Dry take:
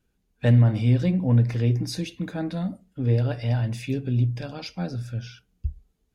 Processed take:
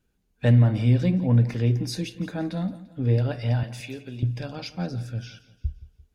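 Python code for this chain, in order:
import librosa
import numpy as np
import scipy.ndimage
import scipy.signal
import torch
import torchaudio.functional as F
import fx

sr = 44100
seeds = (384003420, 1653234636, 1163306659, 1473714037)

p1 = fx.highpass(x, sr, hz=800.0, slope=6, at=(3.63, 4.23))
y = p1 + fx.echo_feedback(p1, sr, ms=172, feedback_pct=43, wet_db=-17.0, dry=0)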